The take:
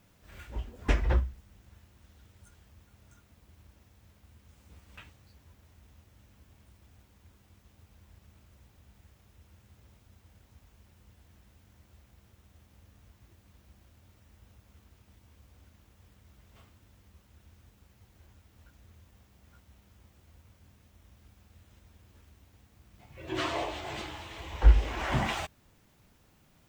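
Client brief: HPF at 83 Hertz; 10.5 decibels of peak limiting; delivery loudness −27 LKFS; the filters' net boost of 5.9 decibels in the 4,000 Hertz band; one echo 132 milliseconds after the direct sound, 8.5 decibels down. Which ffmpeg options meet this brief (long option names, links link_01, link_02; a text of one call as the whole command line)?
ffmpeg -i in.wav -af "highpass=83,equalizer=frequency=4000:width_type=o:gain=8,alimiter=level_in=1.5dB:limit=-24dB:level=0:latency=1,volume=-1.5dB,aecho=1:1:132:0.376,volume=10.5dB" out.wav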